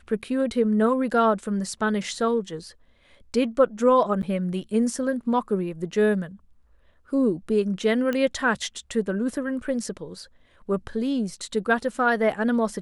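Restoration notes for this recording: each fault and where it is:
4.22–4.23 s: dropout 9.4 ms
8.13 s: pop -15 dBFS

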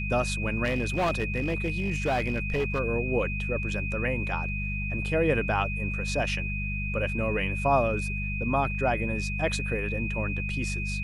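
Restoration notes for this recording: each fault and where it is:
hum 50 Hz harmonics 4 -32 dBFS
whine 2.5 kHz -33 dBFS
0.64–2.80 s: clipped -22 dBFS

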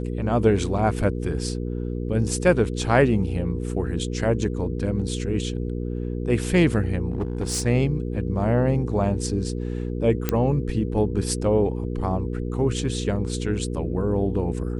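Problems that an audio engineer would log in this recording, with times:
hum 60 Hz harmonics 8 -28 dBFS
7.10–7.67 s: clipped -21 dBFS
10.29 s: pop -7 dBFS

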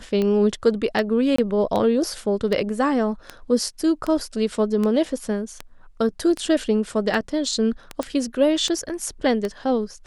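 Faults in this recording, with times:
tick 78 rpm -13 dBFS
1.36–1.38 s: dropout 24 ms
8.03 s: pop -14 dBFS

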